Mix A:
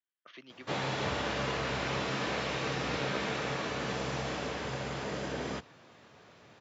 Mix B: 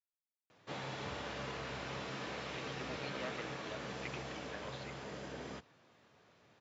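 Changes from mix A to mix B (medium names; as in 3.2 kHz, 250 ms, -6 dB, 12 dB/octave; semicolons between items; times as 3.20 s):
speech: entry +2.20 s; background -9.5 dB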